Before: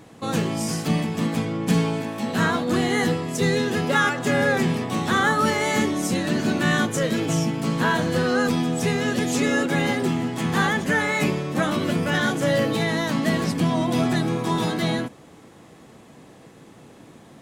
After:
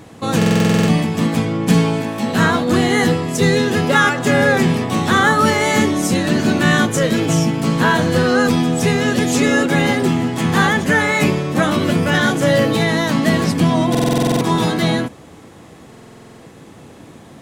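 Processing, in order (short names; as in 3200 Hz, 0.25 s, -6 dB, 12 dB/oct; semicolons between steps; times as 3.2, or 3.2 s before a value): bell 80 Hz +7 dB 0.57 oct; stuck buffer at 0.37/13.9/15.89, samples 2048, times 10; gain +6.5 dB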